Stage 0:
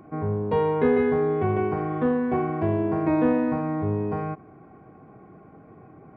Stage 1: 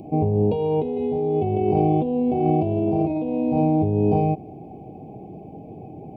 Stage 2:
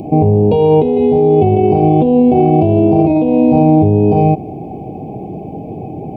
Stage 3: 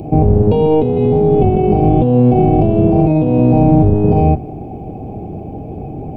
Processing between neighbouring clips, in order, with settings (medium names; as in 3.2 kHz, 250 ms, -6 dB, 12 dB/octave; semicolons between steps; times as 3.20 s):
elliptic band-stop 830–2600 Hz, stop band 40 dB; compressor with a negative ratio -28 dBFS, ratio -1; trim +7 dB
loudness maximiser +14 dB; trim -1 dB
octave divider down 1 oct, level 0 dB; trim -2.5 dB